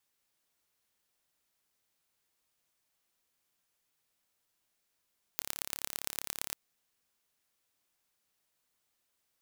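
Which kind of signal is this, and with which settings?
impulse train 35.1 per second, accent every 4, −5.5 dBFS 1.16 s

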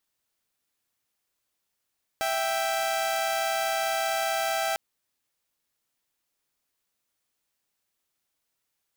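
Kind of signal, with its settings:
held notes E5/G5 saw, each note −25.5 dBFS 2.55 s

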